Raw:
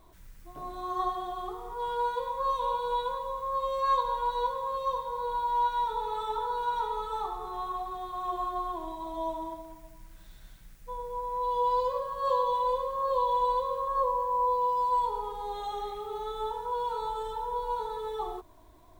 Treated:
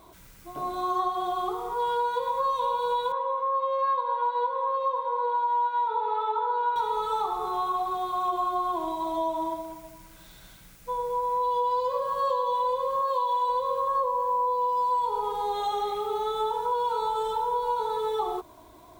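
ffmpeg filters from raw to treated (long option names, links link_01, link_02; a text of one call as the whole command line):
ffmpeg -i in.wav -filter_complex "[0:a]asettb=1/sr,asplit=3[link_01][link_02][link_03];[link_01]atrim=end=3.124[link_04];[link_02]atrim=start=3.12:end=6.76,asetpts=PTS-STARTPTS,afade=type=in:duration=0.004:curve=qsin,afade=type=out:start_time=3.636:duration=0.004:curve=qsin,highpass=370,lowpass=2200[link_05];[link_03]atrim=start=6.756[link_06];[link_04][link_05]acrossfade=duration=0.004:curve1=hsin:curve2=qsin[link_07];[link_07][link_06]acrossfade=duration=0.004:curve1=qsin:curve2=hsin,asplit=3[link_08][link_09][link_10];[link_08]afade=type=out:start_time=13.01:duration=0.02[link_11];[link_09]highpass=660,afade=type=in:start_time=13.01:duration=0.02,afade=type=out:start_time=13.48:duration=0.02[link_12];[link_10]afade=type=in:start_time=13.48:duration=0.02[link_13];[link_11][link_12][link_13]amix=inputs=3:normalize=0,highpass=frequency=160:poles=1,bandreject=frequency=1800:width=11,acompressor=threshold=-32dB:ratio=6,volume=8.5dB" out.wav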